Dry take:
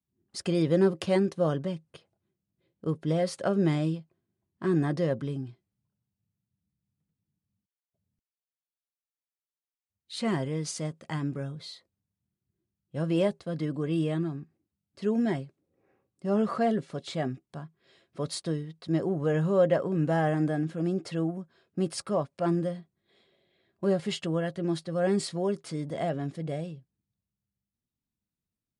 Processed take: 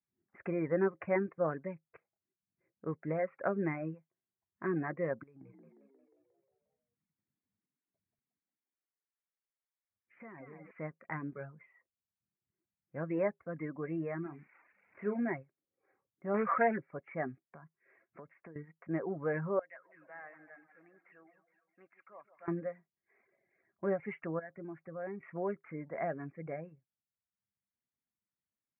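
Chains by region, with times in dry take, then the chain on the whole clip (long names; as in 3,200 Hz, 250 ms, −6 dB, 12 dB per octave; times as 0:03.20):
0:05.23–0:10.71: downward compressor 16 to 1, threshold −39 dBFS + echo with shifted repeats 178 ms, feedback 57%, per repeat +44 Hz, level −5 dB
0:14.22–0:15.29: spike at every zero crossing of −31.5 dBFS + double-tracking delay 34 ms −8 dB
0:16.34–0:16.78: mu-law and A-law mismatch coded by mu + parametric band 2,700 Hz +7 dB 3 octaves + highs frequency-modulated by the lows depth 0.16 ms
0:17.49–0:18.56: high-pass filter 69 Hz 24 dB per octave + downward compressor 12 to 1, threshold −39 dBFS
0:19.59–0:22.48: first difference + echo with a time of its own for lows and highs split 1,100 Hz, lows 149 ms, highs 209 ms, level −9.5 dB
0:24.39–0:25.23: low-pass filter 1,800 Hz 6 dB per octave + downward compressor 2 to 1, threshold −37 dBFS
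whole clip: reverb reduction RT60 0.67 s; Butterworth low-pass 2,300 Hz 96 dB per octave; spectral tilt +3 dB per octave; level −2.5 dB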